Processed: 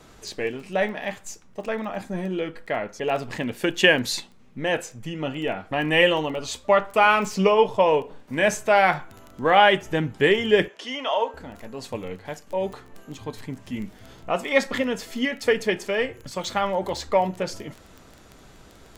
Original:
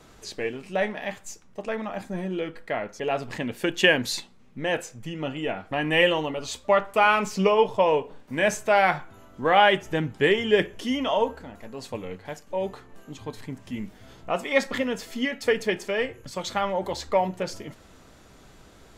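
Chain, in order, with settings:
surface crackle 10 per second −33 dBFS
0:10.68–0:11.34: band-pass filter 540–5,900 Hz
level +2 dB

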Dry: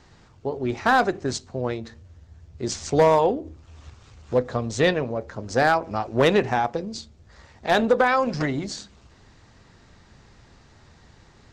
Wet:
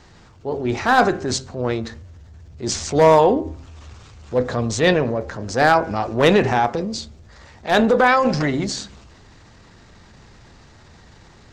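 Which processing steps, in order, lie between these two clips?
transient designer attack −6 dB, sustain +4 dB
hum removal 132.7 Hz, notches 16
level +5.5 dB

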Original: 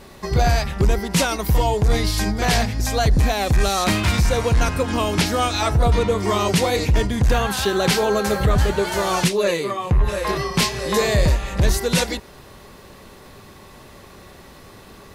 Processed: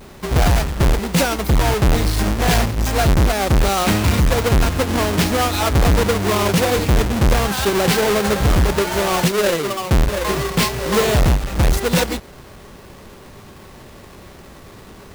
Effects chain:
each half-wave held at its own peak
level −2 dB

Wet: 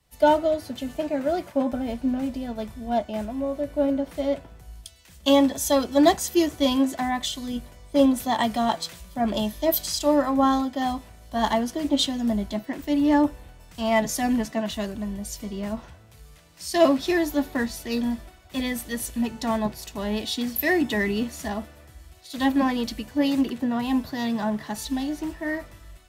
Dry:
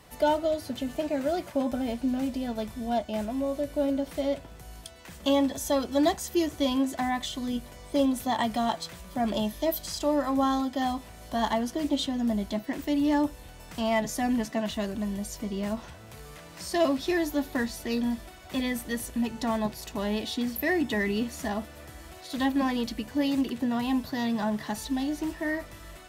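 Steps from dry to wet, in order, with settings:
multiband upward and downward expander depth 70%
level +3.5 dB

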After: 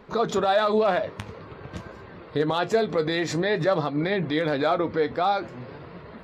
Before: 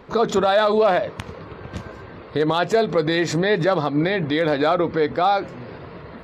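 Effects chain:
flanger 0.49 Hz, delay 4.6 ms, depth 6.4 ms, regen +66%

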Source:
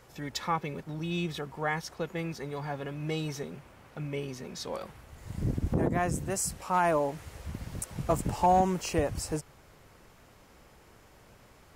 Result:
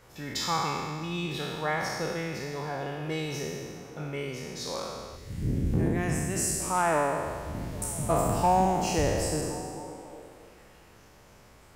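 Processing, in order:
peak hold with a decay on every bin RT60 1.77 s
0:05.16–0:06.60: flat-topped bell 840 Hz −8 dB
echo through a band-pass that steps 267 ms, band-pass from 160 Hz, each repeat 0.7 octaves, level −10 dB
level −1.5 dB

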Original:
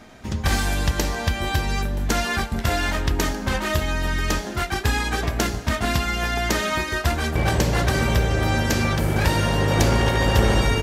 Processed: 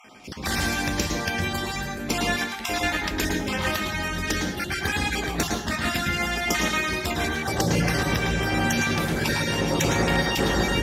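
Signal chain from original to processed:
time-frequency cells dropped at random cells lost 32%
dynamic equaliser 1,300 Hz, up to −4 dB, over −40 dBFS, Q 0.94
asymmetric clip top −16 dBFS
convolution reverb RT60 0.45 s, pre-delay 106 ms, DRR 2 dB

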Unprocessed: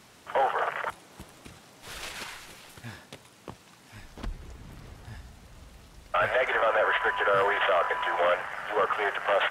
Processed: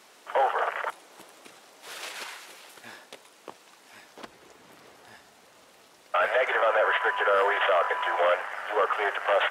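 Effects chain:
Chebyshev high-pass filter 430 Hz, order 2
level +1.5 dB

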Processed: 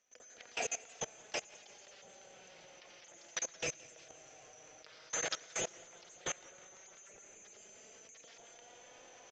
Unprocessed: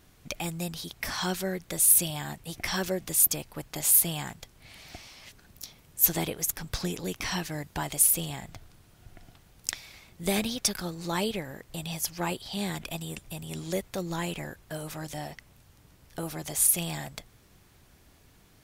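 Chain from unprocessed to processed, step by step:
band-splitting scrambler in four parts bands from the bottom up 3412
wrong playback speed 7.5 ips tape played at 15 ips
on a send at −4.5 dB: convolution reverb RT60 2.8 s, pre-delay 83 ms
on the sum: flanger 0.11 Hz, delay 3.9 ms, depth 2.7 ms, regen +47%
in parallel at 0 dB: downward compressor 16 to 1, threshold −41 dBFS, peak gain reduction 17.5 dB
on the sum: three-way crossover with the lows and the highs turned down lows −13 dB, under 410 Hz, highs −19 dB, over 4,300 Hz
downsampling to 16,000 Hz
octave-band graphic EQ 125/500/1,000/4,000 Hz +6/+5/−10/−4 dB
output level in coarse steps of 22 dB
feedback echo with a swinging delay time 175 ms, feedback 56%, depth 160 cents, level −22.5 dB
level +8.5 dB

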